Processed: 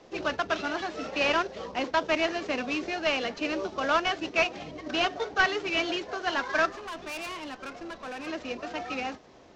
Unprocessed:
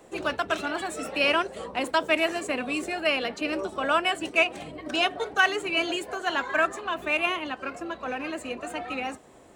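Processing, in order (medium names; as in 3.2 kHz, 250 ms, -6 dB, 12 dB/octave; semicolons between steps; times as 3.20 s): CVSD coder 32 kbps; 6.70–8.27 s: valve stage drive 33 dB, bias 0.4; trim -1 dB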